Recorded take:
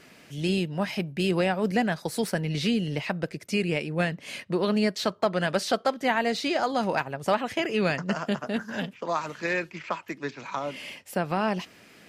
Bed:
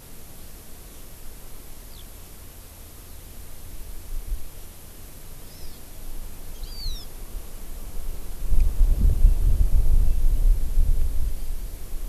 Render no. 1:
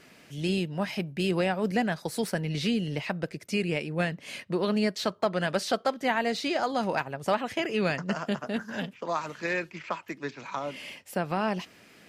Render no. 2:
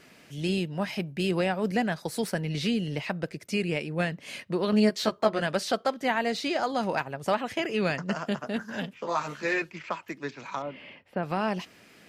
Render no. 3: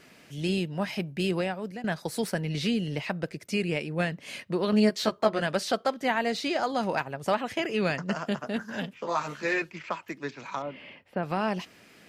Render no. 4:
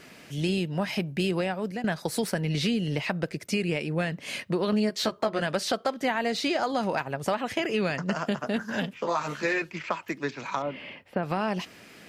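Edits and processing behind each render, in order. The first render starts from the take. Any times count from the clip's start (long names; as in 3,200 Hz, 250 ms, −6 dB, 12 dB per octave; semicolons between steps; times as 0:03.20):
level −2 dB
0:04.71–0:05.42: double-tracking delay 14 ms −2.5 dB; 0:08.95–0:09.62: double-tracking delay 14 ms −2 dB; 0:10.62–0:11.23: high-frequency loss of the air 400 metres
0:01.25–0:01.84: fade out, to −17 dB
in parallel at −2 dB: brickwall limiter −18 dBFS, peak gain reduction 9 dB; on the sum: downward compressor 3 to 1, threshold −24 dBFS, peak gain reduction 7.5 dB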